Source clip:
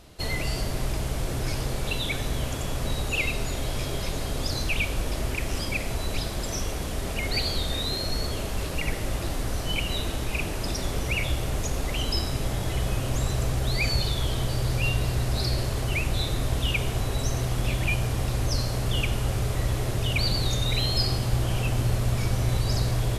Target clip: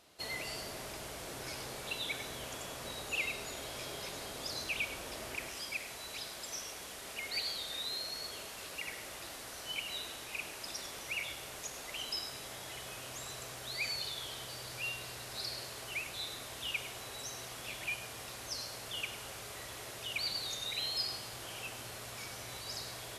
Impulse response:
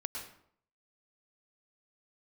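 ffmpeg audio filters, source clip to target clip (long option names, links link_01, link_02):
-filter_complex "[0:a]asetnsamples=nb_out_samples=441:pad=0,asendcmd='5.49 highpass f 1300',highpass=frequency=590:poles=1[link_01];[1:a]atrim=start_sample=2205,afade=type=out:start_time=0.15:duration=0.01,atrim=end_sample=7056[link_02];[link_01][link_02]afir=irnorm=-1:irlink=0,volume=-5.5dB"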